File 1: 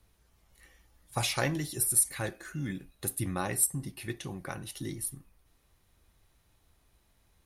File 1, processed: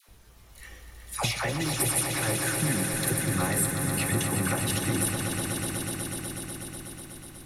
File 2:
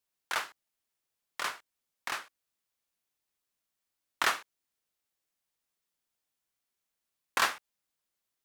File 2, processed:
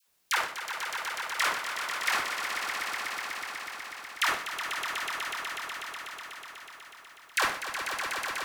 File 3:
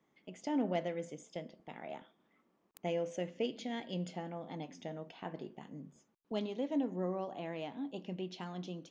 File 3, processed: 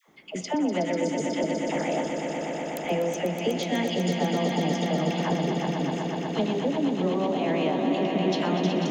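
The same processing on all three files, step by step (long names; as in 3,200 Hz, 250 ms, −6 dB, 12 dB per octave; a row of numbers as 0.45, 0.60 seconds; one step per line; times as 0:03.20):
dynamic equaliser 2,100 Hz, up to +3 dB, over −51 dBFS, Q 2.4
downward compressor 6 to 1, threshold −39 dBFS
all-pass dispersion lows, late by 81 ms, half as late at 760 Hz
on a send: echo that builds up and dies away 123 ms, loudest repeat 5, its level −8 dB
on the sum: normalise the peak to −12 dBFS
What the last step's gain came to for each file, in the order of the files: +12.5, +14.5, +16.0 decibels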